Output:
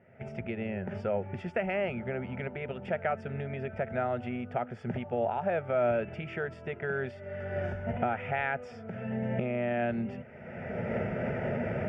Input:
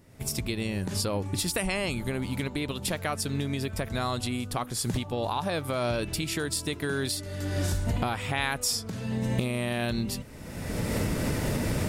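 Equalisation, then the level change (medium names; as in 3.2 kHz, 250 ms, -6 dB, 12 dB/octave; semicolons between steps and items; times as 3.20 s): dynamic bell 2.2 kHz, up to -3 dB, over -44 dBFS, Q 0.86; cabinet simulation 140–2800 Hz, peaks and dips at 240 Hz +9 dB, 360 Hz +7 dB, 660 Hz +5 dB, 1.3 kHz +7 dB; static phaser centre 1.1 kHz, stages 6; 0.0 dB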